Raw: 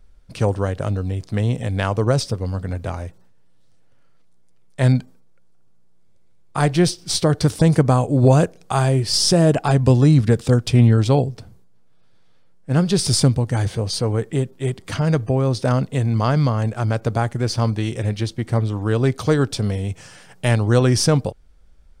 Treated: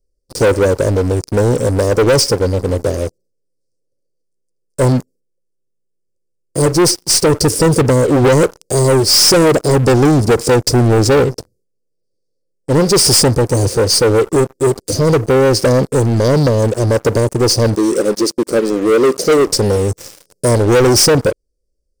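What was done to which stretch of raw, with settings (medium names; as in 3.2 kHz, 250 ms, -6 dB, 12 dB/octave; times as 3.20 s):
4.84–8.45 s: peaking EQ 1.6 kHz -12 dB 1.6 oct
17.75–19.47 s: brick-wall FIR high-pass 160 Hz
whole clip: Chebyshev band-stop 550–4800 Hz, order 4; resonant low shelf 280 Hz -9 dB, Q 1.5; waveshaping leveller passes 5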